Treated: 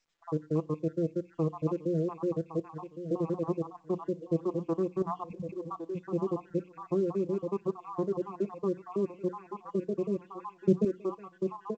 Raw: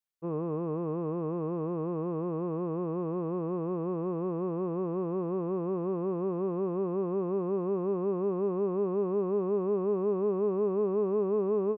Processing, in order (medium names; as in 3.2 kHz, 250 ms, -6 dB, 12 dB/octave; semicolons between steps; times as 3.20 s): random holes in the spectrogram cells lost 73%; treble shelf 2.3 kHz +7 dB; hum notches 60/120/180/240 Hz; comb 5.9 ms, depth 67%; 5.02–6.07 s: compressor with a negative ratio -40 dBFS, ratio -1; 10.45–10.85 s: peaking EQ 130 Hz +14.5 dB 2.2 oct; feedback delay 1110 ms, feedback 46%, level -9.5 dB; reverb removal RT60 1.6 s; FDN reverb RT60 0.32 s, low-frequency decay 1.3×, high-frequency decay 0.95×, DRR 18.5 dB; trim +2.5 dB; µ-law 128 kbps 16 kHz